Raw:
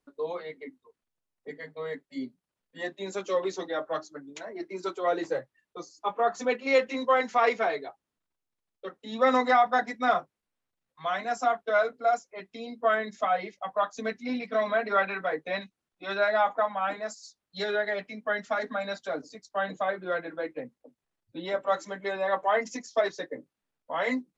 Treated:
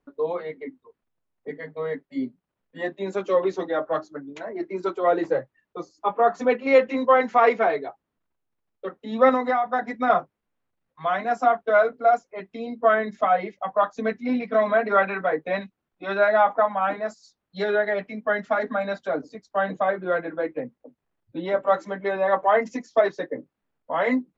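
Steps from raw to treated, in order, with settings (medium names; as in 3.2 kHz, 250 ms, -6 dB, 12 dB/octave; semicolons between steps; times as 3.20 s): treble shelf 2.3 kHz -8.5 dB; 9.29–10.10 s: compression 5:1, threshold -27 dBFS, peak gain reduction 9 dB; tone controls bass +1 dB, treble -8 dB; trim +7 dB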